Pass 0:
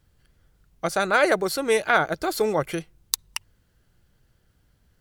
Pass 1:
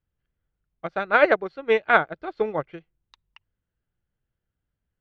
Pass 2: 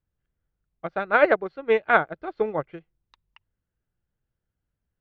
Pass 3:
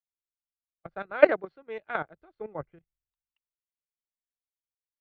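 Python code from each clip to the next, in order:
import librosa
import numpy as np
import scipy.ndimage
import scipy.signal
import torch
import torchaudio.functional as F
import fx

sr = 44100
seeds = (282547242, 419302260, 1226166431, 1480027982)

y1 = scipy.signal.sosfilt(scipy.signal.butter(4, 3200.0, 'lowpass', fs=sr, output='sos'), x)
y1 = fx.upward_expand(y1, sr, threshold_db=-31.0, expansion=2.5)
y1 = y1 * 10.0 ** (4.5 / 20.0)
y2 = fx.high_shelf(y1, sr, hz=3900.0, db=-11.0)
y3 = fx.level_steps(y2, sr, step_db=14)
y3 = fx.band_widen(y3, sr, depth_pct=100)
y3 = y3 * 10.0 ** (-5.0 / 20.0)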